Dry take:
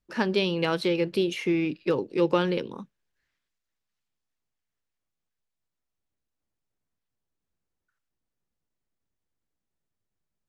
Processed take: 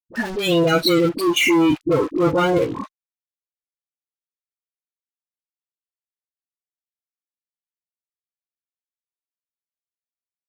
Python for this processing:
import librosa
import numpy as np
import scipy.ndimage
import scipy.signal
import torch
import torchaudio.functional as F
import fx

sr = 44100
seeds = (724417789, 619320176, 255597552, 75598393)

y = fx.fuzz(x, sr, gain_db=38.0, gate_db=-45.0)
y = fx.noise_reduce_blind(y, sr, reduce_db=15)
y = fx.dispersion(y, sr, late='highs', ms=49.0, hz=670.0)